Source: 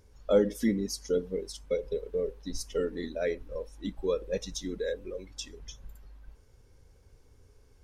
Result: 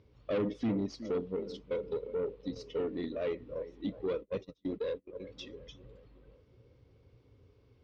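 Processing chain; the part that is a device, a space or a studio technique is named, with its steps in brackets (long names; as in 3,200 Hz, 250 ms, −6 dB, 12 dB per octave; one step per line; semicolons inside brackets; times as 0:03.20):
analogue delay pedal into a guitar amplifier (bucket-brigade delay 367 ms, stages 4,096, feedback 53%, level −17.5 dB; tube saturation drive 28 dB, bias 0.25; loudspeaker in its box 81–3,900 Hz, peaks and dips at 120 Hz +7 dB, 300 Hz +4 dB, 840 Hz −6 dB, 1,600 Hz −9 dB)
0:04.13–0:05.20: noise gate −37 dBFS, range −33 dB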